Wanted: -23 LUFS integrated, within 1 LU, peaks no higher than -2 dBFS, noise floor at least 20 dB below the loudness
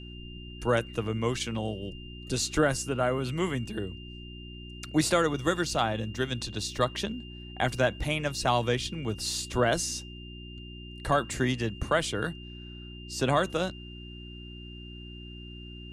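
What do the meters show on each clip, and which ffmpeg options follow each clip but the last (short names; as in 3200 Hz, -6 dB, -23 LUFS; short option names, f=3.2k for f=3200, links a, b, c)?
hum 60 Hz; harmonics up to 360 Hz; hum level -41 dBFS; steady tone 2800 Hz; tone level -47 dBFS; loudness -29.5 LUFS; peak -12.0 dBFS; loudness target -23.0 LUFS
-> -af "bandreject=f=60:t=h:w=4,bandreject=f=120:t=h:w=4,bandreject=f=180:t=h:w=4,bandreject=f=240:t=h:w=4,bandreject=f=300:t=h:w=4,bandreject=f=360:t=h:w=4"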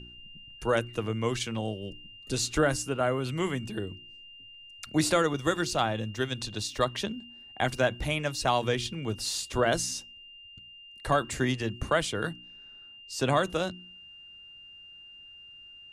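hum none; steady tone 2800 Hz; tone level -47 dBFS
-> -af "bandreject=f=2.8k:w=30"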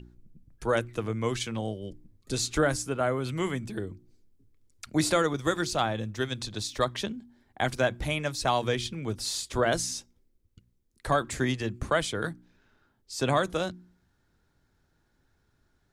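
steady tone none; loudness -29.5 LUFS; peak -12.0 dBFS; loudness target -23.0 LUFS
-> -af "volume=6.5dB"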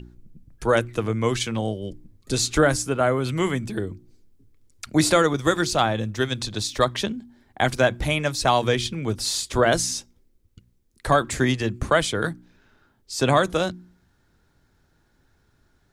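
loudness -23.0 LUFS; peak -5.5 dBFS; noise floor -65 dBFS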